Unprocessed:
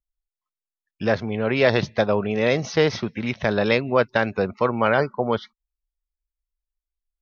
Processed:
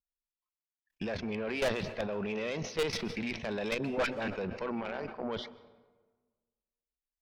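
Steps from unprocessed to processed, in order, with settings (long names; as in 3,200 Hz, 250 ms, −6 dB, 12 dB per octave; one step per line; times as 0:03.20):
0:01.30–0:02.13: low-pass filter 4,400 Hz
noise reduction from a noise print of the clip's start 9 dB
thirty-one-band graphic EQ 125 Hz −10 dB, 1,250 Hz −6 dB, 2,500 Hz +6 dB
output level in coarse steps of 16 dB
0:03.78–0:04.28: all-pass dispersion highs, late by 65 ms, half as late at 790 Hz
0:04.81–0:05.23: amplitude modulation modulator 190 Hz, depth 70%
tube saturation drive 26 dB, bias 0.35
on a send at −16 dB: convolution reverb RT60 1.4 s, pre-delay 117 ms
on the sum: level that may fall only so fast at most 100 dB per second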